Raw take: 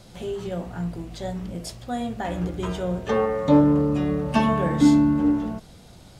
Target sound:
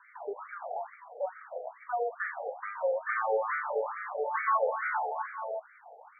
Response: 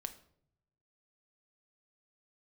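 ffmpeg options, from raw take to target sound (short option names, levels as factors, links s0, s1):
-filter_complex "[0:a]afftfilt=real='re*pow(10,7/40*sin(2*PI*(0.77*log(max(b,1)*sr/1024/100)/log(2)-(1.2)*(pts-256)/sr)))':imag='im*pow(10,7/40*sin(2*PI*(0.77*log(max(b,1)*sr/1024/100)/log(2)-(1.2)*(pts-256)/sr)))':win_size=1024:overlap=0.75,aresample=11025,asoftclip=type=hard:threshold=0.106,aresample=44100,lowshelf=f=120:g=5,acrossover=split=350|870|4300[s0][s1][s2][s3];[s0]acompressor=threshold=0.0251:ratio=4[s4];[s1]acompressor=threshold=0.0316:ratio=4[s5];[s4][s5][s2][s3]amix=inputs=4:normalize=0,asplit=2[s6][s7];[s7]alimiter=level_in=1.12:limit=0.0631:level=0:latency=1:release=80,volume=0.891,volume=1.12[s8];[s6][s8]amix=inputs=2:normalize=0,afftfilt=real='re*between(b*sr/1024,590*pow(1700/590,0.5+0.5*sin(2*PI*2.3*pts/sr))/1.41,590*pow(1700/590,0.5+0.5*sin(2*PI*2.3*pts/sr))*1.41)':imag='im*between(b*sr/1024,590*pow(1700/590,0.5+0.5*sin(2*PI*2.3*pts/sr))/1.41,590*pow(1700/590,0.5+0.5*sin(2*PI*2.3*pts/sr))*1.41)':win_size=1024:overlap=0.75"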